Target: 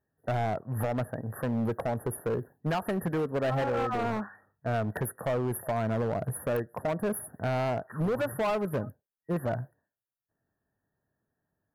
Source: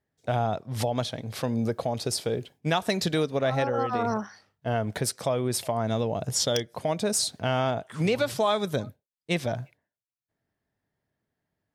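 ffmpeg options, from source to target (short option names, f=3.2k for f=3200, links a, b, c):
-af "afftfilt=real='re*(1-between(b*sr/4096,1900,9900))':imag='im*(1-between(b*sr/4096,1900,9900))':win_size=4096:overlap=0.75,volume=25dB,asoftclip=hard,volume=-25dB"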